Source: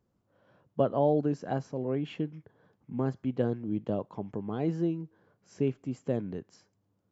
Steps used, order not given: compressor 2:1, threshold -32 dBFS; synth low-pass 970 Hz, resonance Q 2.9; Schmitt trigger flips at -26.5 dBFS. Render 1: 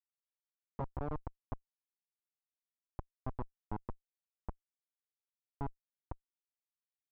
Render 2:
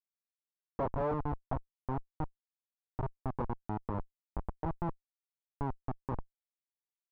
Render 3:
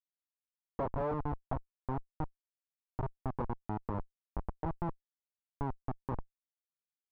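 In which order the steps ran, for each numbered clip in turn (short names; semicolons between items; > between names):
compressor > Schmitt trigger > synth low-pass; Schmitt trigger > compressor > synth low-pass; Schmitt trigger > synth low-pass > compressor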